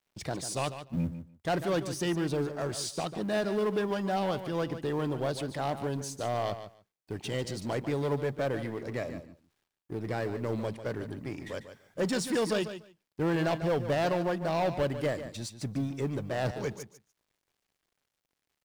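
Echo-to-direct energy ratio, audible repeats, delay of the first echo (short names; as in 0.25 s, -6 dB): -11.0 dB, 2, 0.146 s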